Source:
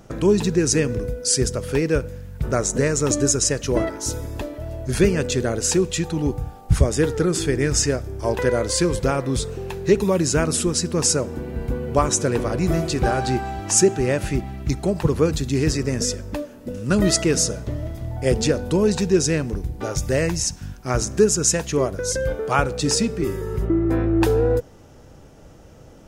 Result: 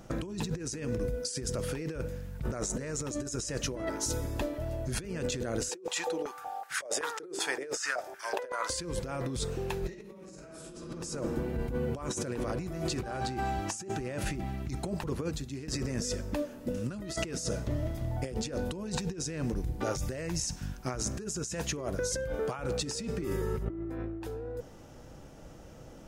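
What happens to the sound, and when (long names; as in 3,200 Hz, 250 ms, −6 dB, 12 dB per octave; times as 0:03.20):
0:05.69–0:08.70: high-pass on a step sequencer 5.3 Hz 390–1,600 Hz
0:09.80–0:10.75: thrown reverb, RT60 1.4 s, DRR −11.5 dB
0:14.67–0:15.68: fade out, to −23 dB
whole clip: parametric band 88 Hz −4.5 dB 0.63 octaves; notch filter 420 Hz, Q 12; compressor whose output falls as the input rises −27 dBFS, ratio −1; level −9 dB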